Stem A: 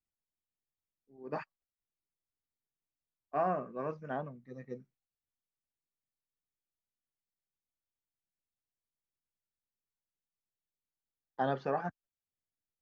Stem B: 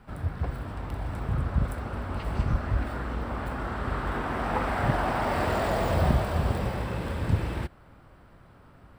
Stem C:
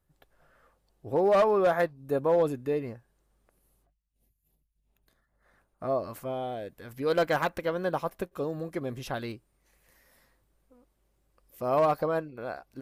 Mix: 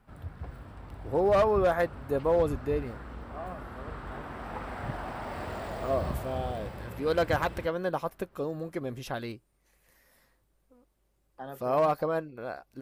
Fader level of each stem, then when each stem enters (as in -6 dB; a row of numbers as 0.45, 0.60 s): -9.5, -10.5, -1.0 dB; 0.00, 0.00, 0.00 s